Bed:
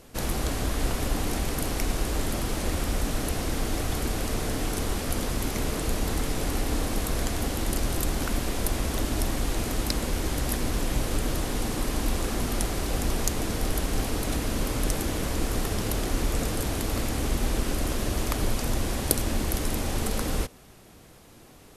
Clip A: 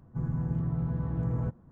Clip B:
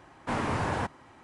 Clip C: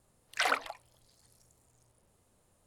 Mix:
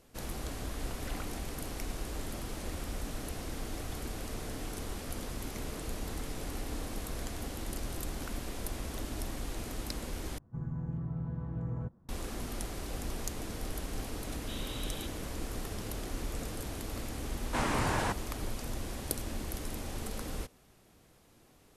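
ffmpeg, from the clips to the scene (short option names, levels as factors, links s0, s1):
-filter_complex "[2:a]asplit=2[s0][s1];[0:a]volume=0.282[s2];[3:a]alimiter=limit=0.0944:level=0:latency=1:release=481[s3];[s0]lowpass=f=3400:t=q:w=0.5098,lowpass=f=3400:t=q:w=0.6013,lowpass=f=3400:t=q:w=0.9,lowpass=f=3400:t=q:w=2.563,afreqshift=-4000[s4];[s1]highshelf=f=3500:g=10[s5];[s2]asplit=2[s6][s7];[s6]atrim=end=10.384[s8];[1:a]atrim=end=1.71,asetpts=PTS-STARTPTS,volume=0.473[s9];[s7]atrim=start=12.086[s10];[s3]atrim=end=2.66,asetpts=PTS-STARTPTS,volume=0.2,afade=t=in:d=0.004:c=hsin,afade=t=out:st=2.656:d=0.004:c=hsin,adelay=680[s11];[s4]atrim=end=1.23,asetpts=PTS-STARTPTS,volume=0.133,afade=t=in:d=0.004:c=hsin,afade=t=out:st=1.226:d=0.004:c=hsin,adelay=14200[s12];[s5]atrim=end=1.23,asetpts=PTS-STARTPTS,volume=0.75,afade=t=in:d=0.004:c=hsin,afade=t=out:st=1.226:d=0.004:c=hsin,adelay=17260[s13];[s8][s9]acrossfade=d=0.004:c1=hsin:c2=hsin[s14];[s14][s10]acrossfade=d=0.004:c1=hsin:c2=hsin[s15];[s15][s11][s12][s13]amix=inputs=4:normalize=0"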